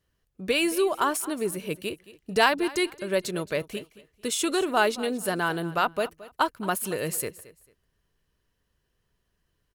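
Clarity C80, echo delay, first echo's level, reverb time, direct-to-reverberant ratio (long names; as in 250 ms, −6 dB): no reverb audible, 222 ms, −18.0 dB, no reverb audible, no reverb audible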